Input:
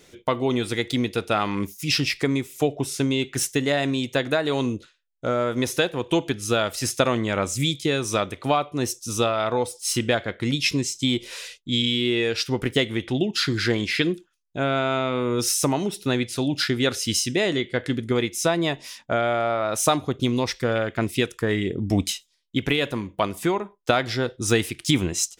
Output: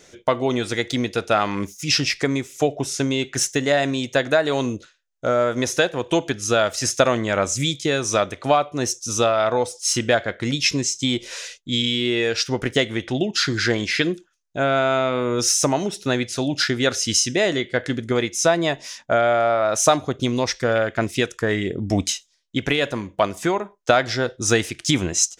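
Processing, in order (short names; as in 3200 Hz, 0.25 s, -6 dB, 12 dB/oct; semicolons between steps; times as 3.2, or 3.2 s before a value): fifteen-band EQ 630 Hz +6 dB, 1600 Hz +5 dB, 6300 Hz +9 dB, 16000 Hz -11 dB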